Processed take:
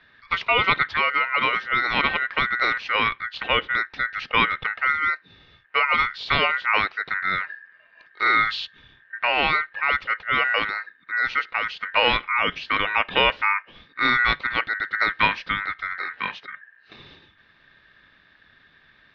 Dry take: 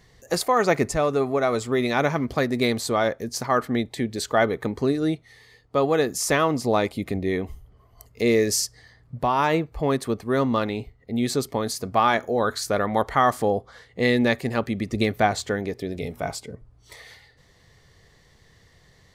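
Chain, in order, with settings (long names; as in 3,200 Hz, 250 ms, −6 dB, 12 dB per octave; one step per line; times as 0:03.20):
ring modulation 1,700 Hz
Butterworth low-pass 4,400 Hz 48 dB per octave
level +3 dB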